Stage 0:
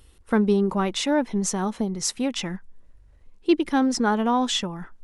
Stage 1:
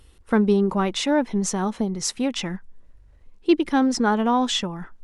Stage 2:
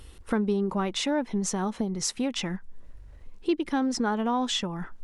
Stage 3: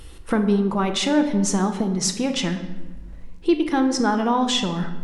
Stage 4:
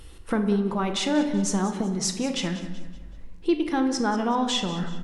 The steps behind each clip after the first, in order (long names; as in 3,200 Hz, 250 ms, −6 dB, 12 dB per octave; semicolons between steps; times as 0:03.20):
high-shelf EQ 10,000 Hz −6.5 dB; level +1.5 dB
downward compressor 2 to 1, threshold −38 dBFS, peak gain reduction 14 dB; level +5 dB
rectangular room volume 650 cubic metres, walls mixed, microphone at 0.72 metres; level +5.5 dB
repeating echo 189 ms, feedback 42%, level −15 dB; level −4 dB